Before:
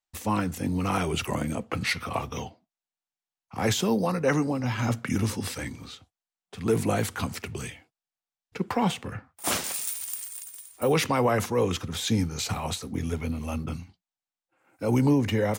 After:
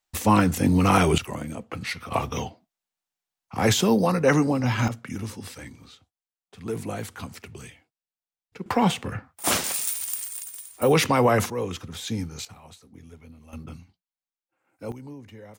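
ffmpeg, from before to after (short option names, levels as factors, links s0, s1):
-af "asetnsamples=n=441:p=0,asendcmd='1.18 volume volume -4dB;2.12 volume volume 4.5dB;4.88 volume volume -6.5dB;8.66 volume volume 4dB;11.5 volume volume -4.5dB;12.45 volume volume -17dB;13.53 volume volume -7dB;14.92 volume volume -19.5dB',volume=2.51"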